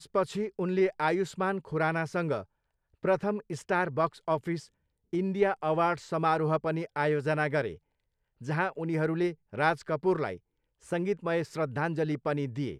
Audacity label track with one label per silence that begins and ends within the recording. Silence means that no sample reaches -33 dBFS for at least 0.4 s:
2.410000	3.040000	silence
4.590000	5.130000	silence
7.720000	8.470000	silence
10.340000	10.920000	silence